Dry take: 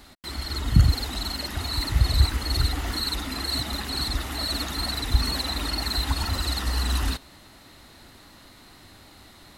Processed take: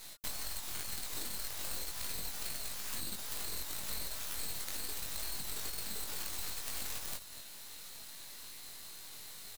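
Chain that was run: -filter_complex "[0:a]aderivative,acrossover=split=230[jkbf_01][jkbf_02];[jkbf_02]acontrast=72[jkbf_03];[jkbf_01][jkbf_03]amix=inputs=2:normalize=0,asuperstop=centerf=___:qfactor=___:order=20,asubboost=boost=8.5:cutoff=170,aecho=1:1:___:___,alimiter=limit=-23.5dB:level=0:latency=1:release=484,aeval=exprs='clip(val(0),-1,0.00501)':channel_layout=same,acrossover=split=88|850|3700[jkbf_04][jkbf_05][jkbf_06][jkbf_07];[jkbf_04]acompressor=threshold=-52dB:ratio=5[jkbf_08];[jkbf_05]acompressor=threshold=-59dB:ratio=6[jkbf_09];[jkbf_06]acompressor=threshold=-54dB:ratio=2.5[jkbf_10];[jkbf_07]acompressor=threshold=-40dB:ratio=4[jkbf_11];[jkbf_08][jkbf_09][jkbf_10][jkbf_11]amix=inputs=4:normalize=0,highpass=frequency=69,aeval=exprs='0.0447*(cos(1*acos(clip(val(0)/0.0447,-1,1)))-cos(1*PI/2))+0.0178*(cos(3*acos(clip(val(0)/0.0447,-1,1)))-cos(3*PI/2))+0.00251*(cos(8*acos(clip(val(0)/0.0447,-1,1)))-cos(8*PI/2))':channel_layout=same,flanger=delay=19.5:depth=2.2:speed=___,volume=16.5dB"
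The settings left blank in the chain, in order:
1300, 6.5, 247, 0.106, 2.1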